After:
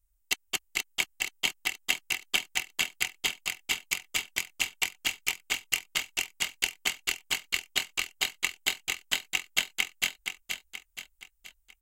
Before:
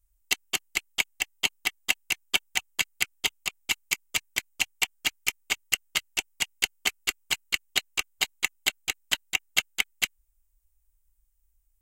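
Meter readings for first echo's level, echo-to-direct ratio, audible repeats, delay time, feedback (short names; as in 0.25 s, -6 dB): -6.0 dB, -5.0 dB, 5, 0.475 s, 45%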